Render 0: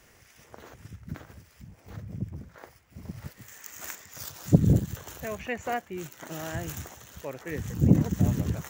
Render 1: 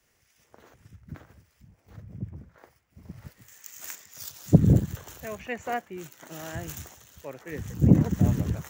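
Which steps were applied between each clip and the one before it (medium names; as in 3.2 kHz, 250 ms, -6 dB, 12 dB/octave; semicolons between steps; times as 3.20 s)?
three bands expanded up and down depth 40%; trim -1.5 dB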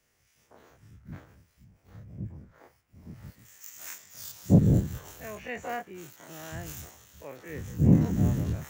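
every event in the spectrogram widened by 60 ms; trim -6.5 dB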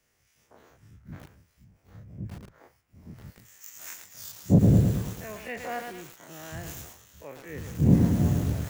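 bit-crushed delay 111 ms, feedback 55%, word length 7-bit, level -4 dB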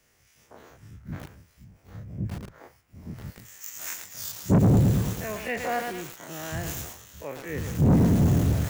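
saturation -21.5 dBFS, distortion -8 dB; trim +6.5 dB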